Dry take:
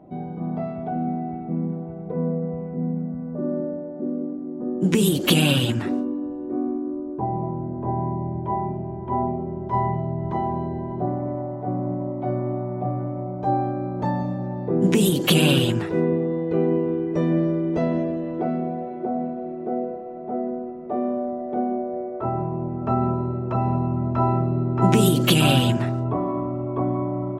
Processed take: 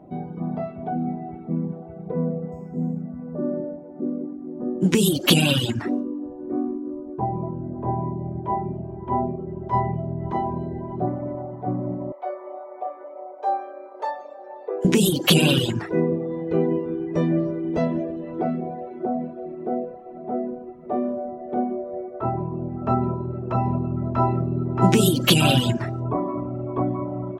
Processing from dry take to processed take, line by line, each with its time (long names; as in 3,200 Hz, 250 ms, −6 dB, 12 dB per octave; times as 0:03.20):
0:02.52–0:03.02: linearly interpolated sample-rate reduction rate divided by 6×
0:12.12–0:14.85: elliptic high-pass filter 430 Hz, stop band 60 dB
whole clip: dynamic equaliser 5,100 Hz, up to +4 dB, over −45 dBFS, Q 1.4; reverb reduction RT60 0.83 s; level +1.5 dB